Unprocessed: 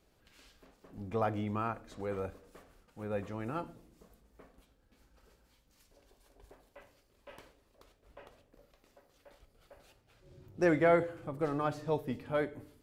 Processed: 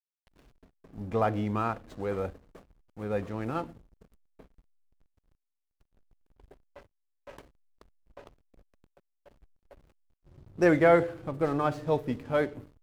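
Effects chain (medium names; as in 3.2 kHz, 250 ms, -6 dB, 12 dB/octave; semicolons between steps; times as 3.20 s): hysteresis with a dead band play -49.5 dBFS; trim +5.5 dB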